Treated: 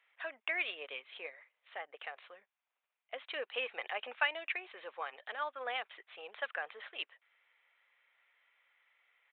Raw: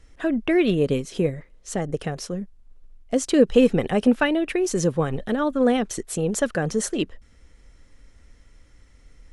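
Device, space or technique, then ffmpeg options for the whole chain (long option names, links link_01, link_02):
musical greeting card: -af "aresample=8000,aresample=44100,highpass=frequency=760:width=0.5412,highpass=frequency=760:width=1.3066,equalizer=frequency=2300:width_type=o:width=0.51:gain=7,volume=-9dB"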